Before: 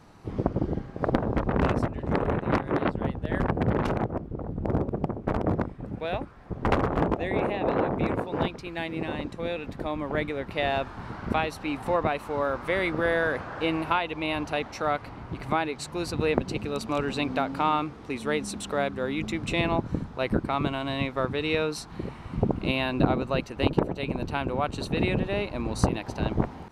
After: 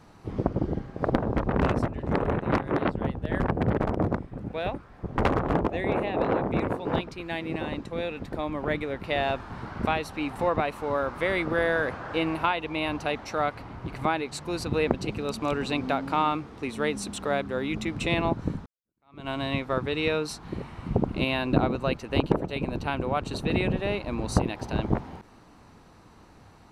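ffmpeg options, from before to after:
-filter_complex "[0:a]asplit=3[a][b][c];[a]atrim=end=3.782[d];[b]atrim=start=5.248:end=20.13,asetpts=PTS-STARTPTS,afade=t=out:st=14.878:d=0.004:c=hsin[e];[c]atrim=start=20.13,asetpts=PTS-STARTPTS,afade=t=in:d=0.63:c=exp[f];[e][f]concat=n=2:v=0:a=1[g];[d][g]acrossfade=d=0.004:c1=hsin:c2=hsin"

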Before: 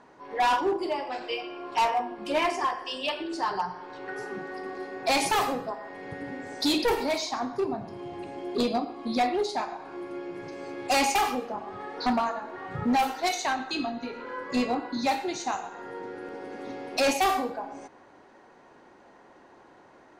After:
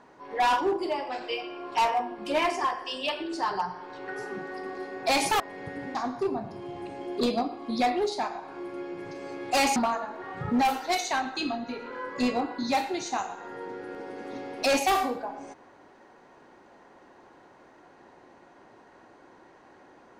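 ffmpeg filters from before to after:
-filter_complex "[0:a]asplit=4[a][b][c][d];[a]atrim=end=5.402[e];[b]atrim=start=5.848:end=6.402[f];[c]atrim=start=7.318:end=11.132[g];[d]atrim=start=12.098[h];[e][f]acrossfade=d=0.004:c1=hsin:c2=hsin[i];[i][g]acrossfade=d=0.004:c1=hsin:c2=hsin[j];[j][h]acrossfade=d=0.004:c1=hsin:c2=hsin"

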